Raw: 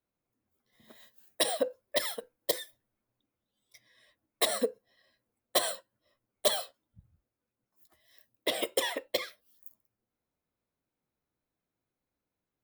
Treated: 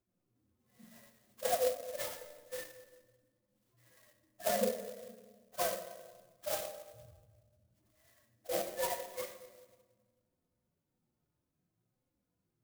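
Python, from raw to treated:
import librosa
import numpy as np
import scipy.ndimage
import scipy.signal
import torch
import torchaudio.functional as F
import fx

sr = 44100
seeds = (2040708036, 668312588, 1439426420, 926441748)

y = fx.hpss_only(x, sr, part='harmonic')
y = fx.low_shelf(y, sr, hz=490.0, db=8.0)
y = fx.room_shoebox(y, sr, seeds[0], volume_m3=1400.0, walls='mixed', distance_m=0.92)
y = fx.clock_jitter(y, sr, seeds[1], jitter_ms=0.087)
y = y * librosa.db_to_amplitude(1.5)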